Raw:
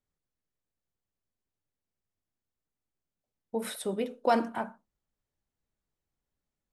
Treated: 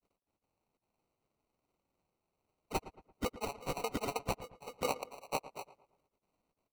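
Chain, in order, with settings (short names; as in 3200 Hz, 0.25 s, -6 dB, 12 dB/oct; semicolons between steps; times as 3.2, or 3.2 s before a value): trilling pitch shifter -8.5 st, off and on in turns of 0.401 s; HPF 1000 Hz 12 dB/oct; high shelf 4100 Hz -5 dB; negative-ratio compressor -45 dBFS, ratio -1; grains, spray 0.99 s; sample-and-hold 26×; on a send: darkening echo 0.113 s, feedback 40%, low-pass 2400 Hz, level -15 dB; on the sum: gain +11 dB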